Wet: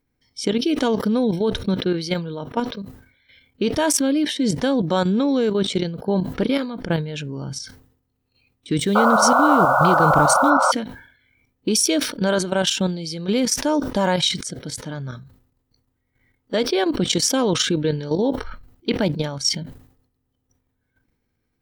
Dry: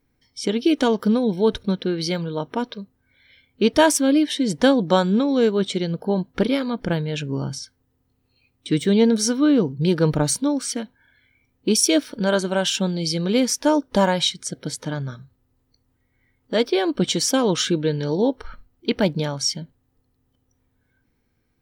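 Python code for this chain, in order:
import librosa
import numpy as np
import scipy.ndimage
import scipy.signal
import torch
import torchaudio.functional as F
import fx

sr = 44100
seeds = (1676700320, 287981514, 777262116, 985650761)

y = fx.level_steps(x, sr, step_db=11)
y = fx.spec_paint(y, sr, seeds[0], shape='noise', start_s=8.95, length_s=1.77, low_hz=510.0, high_hz=1500.0, level_db=-20.0)
y = fx.mod_noise(y, sr, seeds[1], snr_db=31, at=(8.85, 10.49), fade=0.02)
y = fx.sustainer(y, sr, db_per_s=97.0)
y = y * librosa.db_to_amplitude(3.5)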